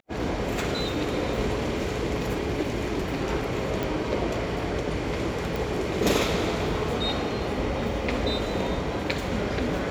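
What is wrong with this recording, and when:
3.83 pop
5.56 pop

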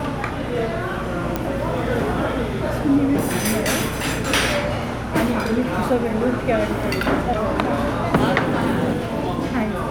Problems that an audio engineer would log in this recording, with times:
1.36 pop -8 dBFS

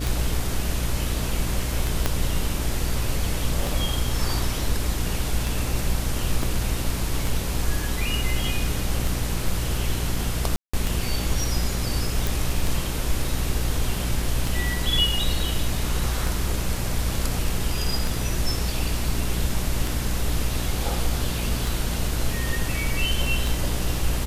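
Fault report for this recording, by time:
buzz 60 Hz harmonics 10 -28 dBFS
tick 33 1/3 rpm
2.06 pop -6 dBFS
6.43 gap 2 ms
10.56–10.73 gap 0.175 s
12.27 pop

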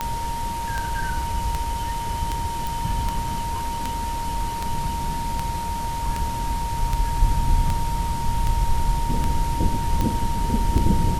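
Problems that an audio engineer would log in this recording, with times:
tick 78 rpm -10 dBFS
tone 930 Hz -27 dBFS
2.67 pop

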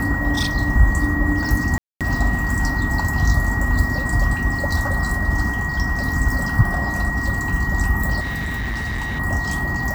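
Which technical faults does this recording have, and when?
tone 1900 Hz -24 dBFS
1.78–2.01 gap 0.227 s
8.2–9.2 clipped -21.5 dBFS

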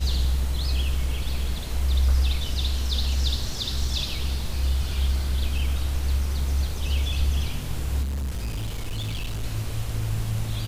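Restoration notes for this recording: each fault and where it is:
8.02–9.44 clipped -25.5 dBFS

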